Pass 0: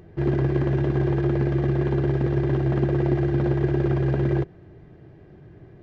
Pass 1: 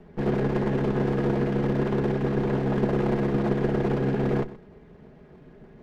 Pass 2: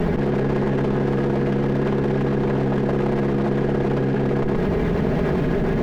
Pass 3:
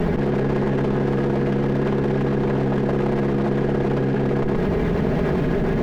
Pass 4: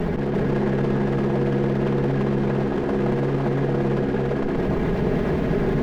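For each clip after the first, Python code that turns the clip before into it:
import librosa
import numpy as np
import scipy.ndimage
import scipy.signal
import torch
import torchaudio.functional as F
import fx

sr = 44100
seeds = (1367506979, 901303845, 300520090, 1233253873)

y1 = fx.lower_of_two(x, sr, delay_ms=4.8)
y1 = y1 + 10.0 ** (-17.0 / 20.0) * np.pad(y1, (int(125 * sr / 1000.0), 0))[:len(y1)]
y2 = fx.env_flatten(y1, sr, amount_pct=100)
y3 = y2
y4 = y3 + 10.0 ** (-3.0 / 20.0) * np.pad(y3, (int(341 * sr / 1000.0), 0))[:len(y3)]
y4 = y4 * librosa.db_to_amplitude(-3.0)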